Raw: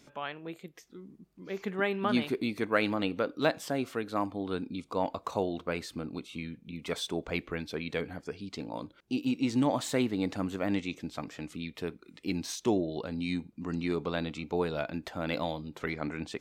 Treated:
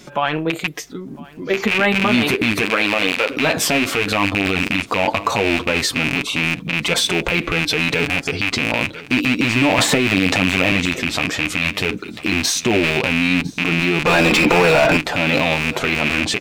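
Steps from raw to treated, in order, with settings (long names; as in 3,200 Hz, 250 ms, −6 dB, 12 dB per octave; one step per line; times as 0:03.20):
loose part that buzzes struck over −41 dBFS, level −18 dBFS
0:02.61–0:03.29: high-pass filter 180 Hz → 590 Hz 12 dB per octave
transient designer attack +4 dB, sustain +8 dB
0:14.06–0:14.97: mid-hump overdrive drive 31 dB, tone 2,400 Hz, clips at −18 dBFS
flanger 0.14 Hz, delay 5.4 ms, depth 6.5 ms, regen −20%
single-tap delay 1,005 ms −23.5 dB
boost into a limiter +25.5 dB
0:09.78–0:10.72: multiband upward and downward compressor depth 100%
level −5.5 dB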